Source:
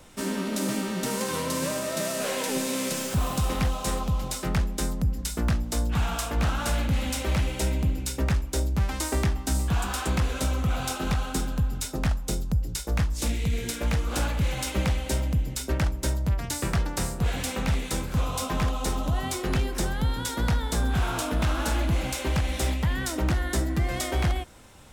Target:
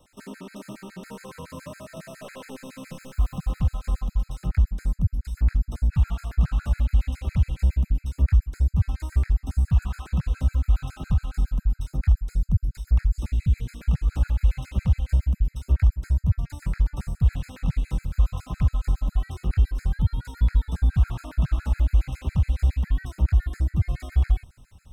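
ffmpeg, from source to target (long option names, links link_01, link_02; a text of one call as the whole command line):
ffmpeg -i in.wav -filter_complex "[0:a]acrossover=split=2800[link_01][link_02];[link_02]acompressor=threshold=-41dB:ratio=4:attack=1:release=60[link_03];[link_01][link_03]amix=inputs=2:normalize=0,asubboost=boost=7:cutoff=140,afftfilt=real='re*gt(sin(2*PI*7.2*pts/sr)*(1-2*mod(floor(b*sr/1024/1300),2)),0)':imag='im*gt(sin(2*PI*7.2*pts/sr)*(1-2*mod(floor(b*sr/1024/1300),2)),0)':win_size=1024:overlap=0.75,volume=-7dB" out.wav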